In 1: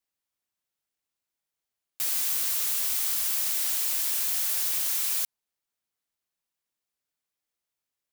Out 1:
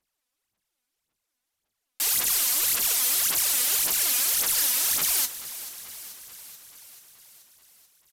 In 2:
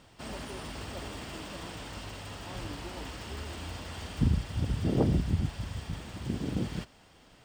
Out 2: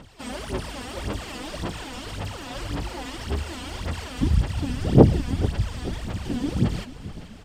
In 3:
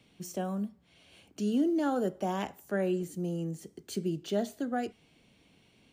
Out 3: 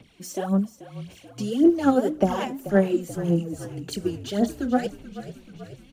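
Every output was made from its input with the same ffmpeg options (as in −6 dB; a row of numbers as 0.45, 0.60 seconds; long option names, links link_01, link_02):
-filter_complex "[0:a]aphaser=in_gain=1:out_gain=1:delay=4.1:decay=0.74:speed=1.8:type=sinusoidal,asplit=8[link_01][link_02][link_03][link_04][link_05][link_06][link_07][link_08];[link_02]adelay=434,afreqshift=-34,volume=-15dB[link_09];[link_03]adelay=868,afreqshift=-68,volume=-18.9dB[link_10];[link_04]adelay=1302,afreqshift=-102,volume=-22.8dB[link_11];[link_05]adelay=1736,afreqshift=-136,volume=-26.6dB[link_12];[link_06]adelay=2170,afreqshift=-170,volume=-30.5dB[link_13];[link_07]adelay=2604,afreqshift=-204,volume=-34.4dB[link_14];[link_08]adelay=3038,afreqshift=-238,volume=-38.3dB[link_15];[link_01][link_09][link_10][link_11][link_12][link_13][link_14][link_15]amix=inputs=8:normalize=0,aresample=32000,aresample=44100,volume=3dB"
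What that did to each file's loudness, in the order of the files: +3.0, +8.0, +8.5 LU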